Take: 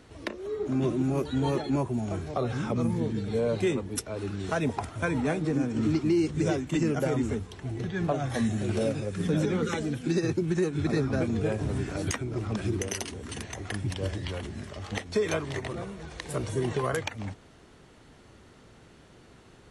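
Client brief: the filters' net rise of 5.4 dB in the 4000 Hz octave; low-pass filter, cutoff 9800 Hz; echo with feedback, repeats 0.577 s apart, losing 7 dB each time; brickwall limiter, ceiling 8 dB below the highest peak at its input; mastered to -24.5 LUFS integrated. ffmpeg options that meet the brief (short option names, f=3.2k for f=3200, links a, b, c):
-af "lowpass=9.8k,equalizer=f=4k:t=o:g=7,alimiter=limit=-20.5dB:level=0:latency=1,aecho=1:1:577|1154|1731|2308|2885:0.447|0.201|0.0905|0.0407|0.0183,volume=5.5dB"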